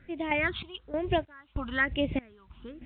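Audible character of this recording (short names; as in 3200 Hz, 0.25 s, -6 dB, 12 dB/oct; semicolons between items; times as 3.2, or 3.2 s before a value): phasing stages 6, 1.1 Hz, lowest notch 480–1400 Hz; random-step tremolo 3.2 Hz, depth 95%; A-law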